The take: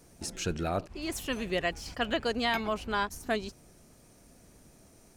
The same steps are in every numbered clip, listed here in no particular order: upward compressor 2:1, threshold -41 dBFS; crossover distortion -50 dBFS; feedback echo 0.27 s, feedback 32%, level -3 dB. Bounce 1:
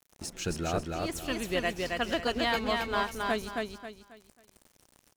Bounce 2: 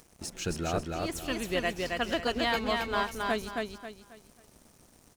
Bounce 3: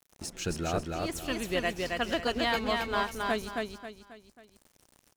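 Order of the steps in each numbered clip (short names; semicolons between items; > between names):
crossover distortion > upward compressor > feedback echo; upward compressor > crossover distortion > feedback echo; crossover distortion > feedback echo > upward compressor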